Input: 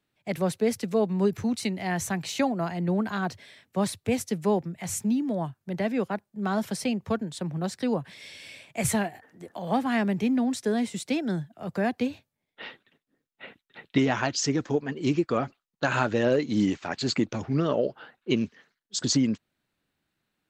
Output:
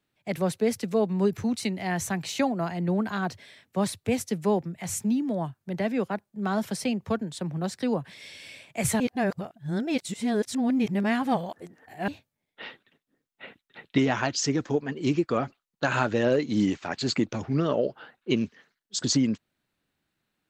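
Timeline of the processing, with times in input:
9.00–12.08 s: reverse

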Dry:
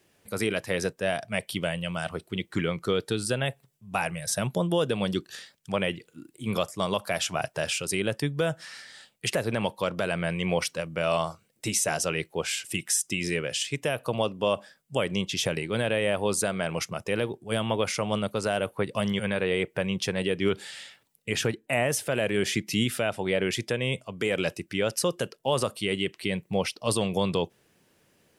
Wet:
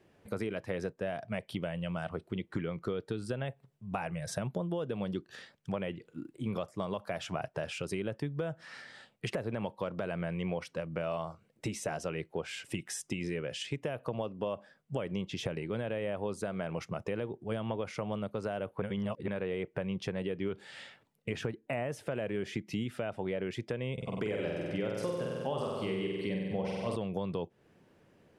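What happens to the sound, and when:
18.82–19.28 s: reverse
23.93–26.96 s: flutter echo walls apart 8.1 m, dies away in 1.2 s
whole clip: low-pass 1.1 kHz 6 dB/octave; compression 4:1, threshold -37 dBFS; trim +3.5 dB

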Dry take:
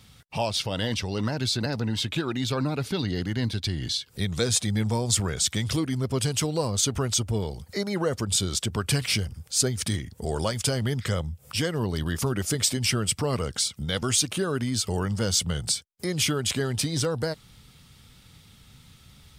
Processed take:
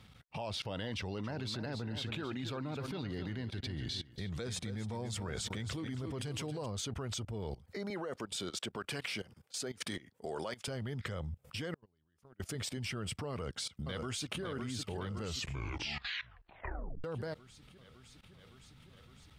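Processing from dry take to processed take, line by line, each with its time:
0.97–6.66 s: feedback delay 269 ms, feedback 29%, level -11 dB
7.90–10.68 s: Bessel high-pass 300 Hz
11.74–12.40 s: gate -22 dBFS, range -32 dB
13.30–14.41 s: echo throw 560 ms, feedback 70%, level -6 dB
15.11 s: tape stop 1.93 s
whole clip: tone controls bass -2 dB, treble -12 dB; level held to a coarse grid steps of 19 dB; trim -1 dB

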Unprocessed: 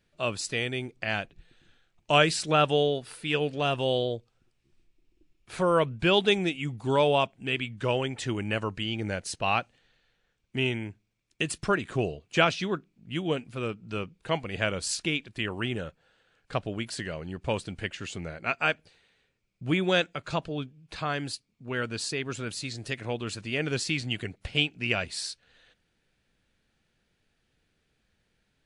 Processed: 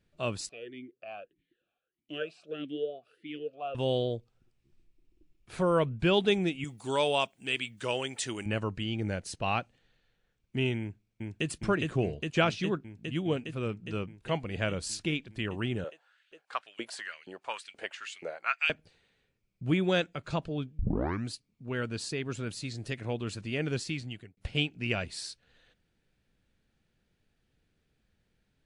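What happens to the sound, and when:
0.49–3.75 s: talking filter a-i 1.6 Hz
6.64–8.46 s: RIAA curve recording
10.79–11.48 s: echo throw 410 ms, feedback 80%, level -1.5 dB
15.84–18.70 s: LFO high-pass saw up 2.1 Hz 420–3000 Hz
20.79 s: tape start 0.52 s
23.45–24.37 s: fade out equal-power
whole clip: bass shelf 470 Hz +6.5 dB; trim -5.5 dB

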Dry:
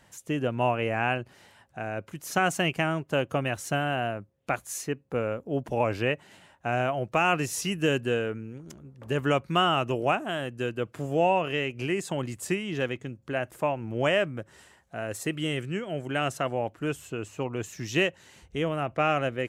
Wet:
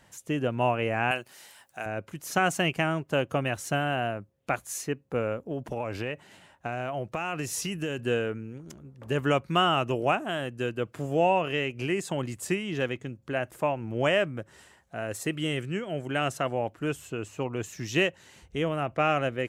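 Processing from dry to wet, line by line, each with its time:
1.11–1.86 s: RIAA curve recording
5.49–7.99 s: compression, threshold -27 dBFS

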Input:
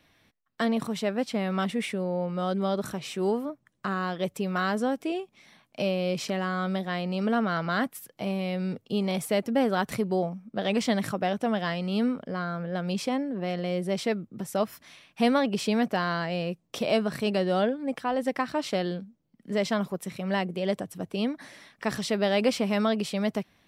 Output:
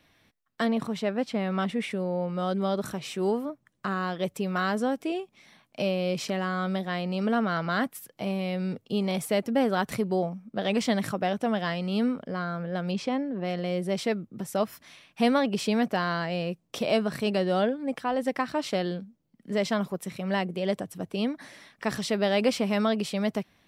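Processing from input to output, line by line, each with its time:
0.67–1.91 s: treble shelf 5.9 kHz -8.5 dB
12.91–13.45 s: distance through air 83 m

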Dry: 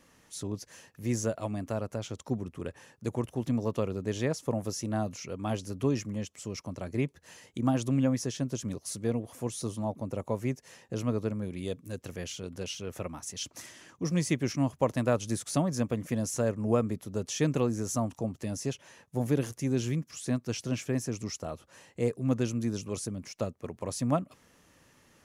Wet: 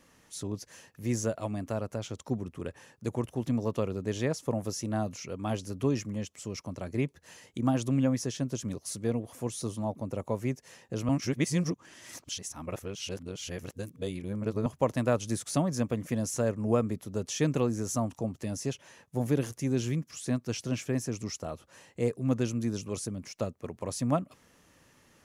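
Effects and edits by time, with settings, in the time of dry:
11.09–14.66 s: reverse

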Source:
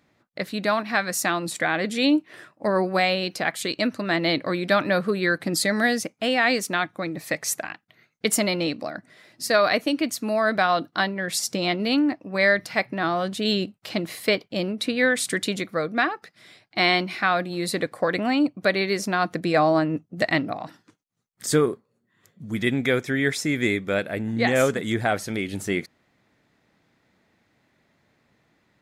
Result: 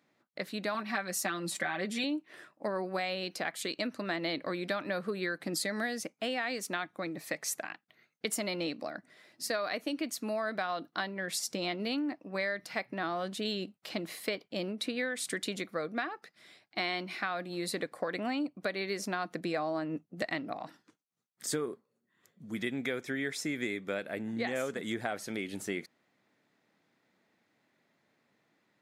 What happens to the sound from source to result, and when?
0.74–2.04 s: comb 5.2 ms, depth 91%
whole clip: high-pass 180 Hz 12 dB/octave; compression, threshold -23 dBFS; trim -7 dB

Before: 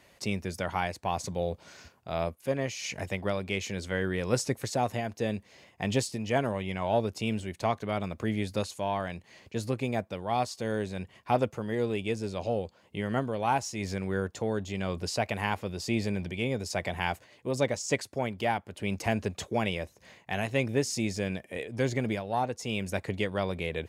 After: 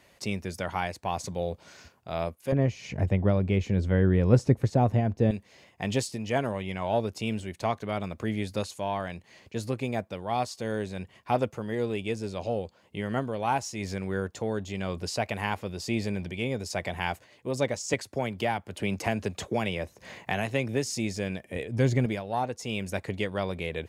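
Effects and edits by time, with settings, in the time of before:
2.52–5.31 s: tilt EQ -4 dB/octave
17.93–20.86 s: three bands compressed up and down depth 70%
21.46–22.06 s: bass shelf 200 Hz +11.5 dB

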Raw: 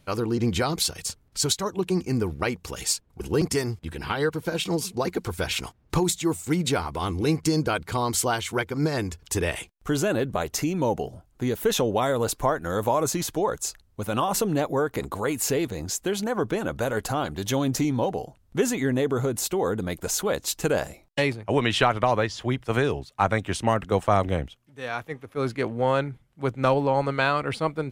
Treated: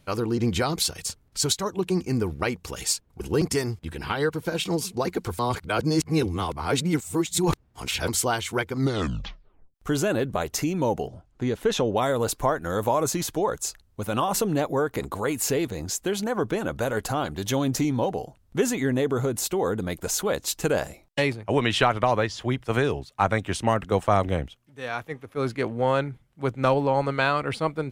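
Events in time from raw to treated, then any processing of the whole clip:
5.39–8.08 s: reverse
8.73 s: tape stop 1.01 s
11.07–11.97 s: distance through air 67 m

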